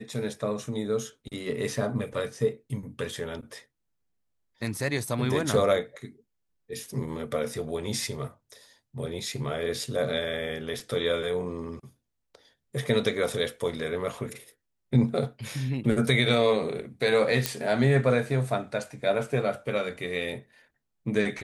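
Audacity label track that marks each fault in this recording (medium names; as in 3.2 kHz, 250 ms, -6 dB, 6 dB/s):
17.460000	17.460000	pop -7 dBFS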